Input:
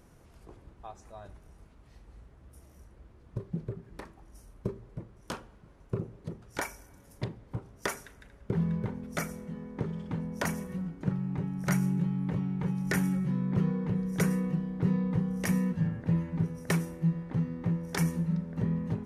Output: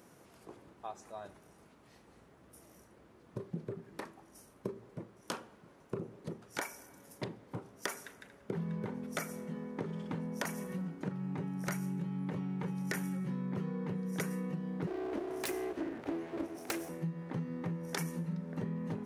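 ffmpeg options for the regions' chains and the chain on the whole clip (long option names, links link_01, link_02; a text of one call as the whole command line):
ffmpeg -i in.wav -filter_complex "[0:a]asettb=1/sr,asplit=3[link_01][link_02][link_03];[link_01]atrim=end=14.874[link_04];[link_02]atrim=start=14.87:end=16.89,asetpts=PTS-STARTPTS,afade=type=in:duration=0.004:curve=qsin,afade=type=out:start_time=2.016:duration=0.004:curve=qsin,asuperstop=centerf=1100:order=4:qfactor=3.1,aeval=exprs='abs(val(0))':channel_layout=same[link_05];[link_03]atrim=start=16.886[link_06];[link_04][link_05]acrossfade=duration=0.004:curve1=hsin:curve2=qsin[link_07];[link_07][link_06]acrossfade=duration=0.004:curve1=qsin:curve2=hsin,highpass=200,highshelf=frequency=12000:gain=4,acompressor=threshold=-36dB:ratio=6,volume=2dB" out.wav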